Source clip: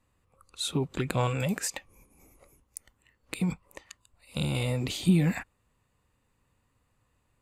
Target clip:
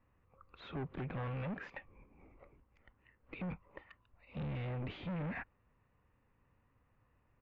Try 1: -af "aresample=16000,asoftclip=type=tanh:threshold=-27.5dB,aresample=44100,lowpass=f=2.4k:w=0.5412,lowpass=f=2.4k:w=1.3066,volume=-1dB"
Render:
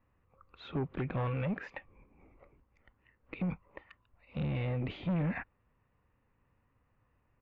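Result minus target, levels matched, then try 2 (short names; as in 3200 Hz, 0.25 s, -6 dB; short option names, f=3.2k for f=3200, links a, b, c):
soft clip: distortion -5 dB
-af "aresample=16000,asoftclip=type=tanh:threshold=-36.5dB,aresample=44100,lowpass=f=2.4k:w=0.5412,lowpass=f=2.4k:w=1.3066,volume=-1dB"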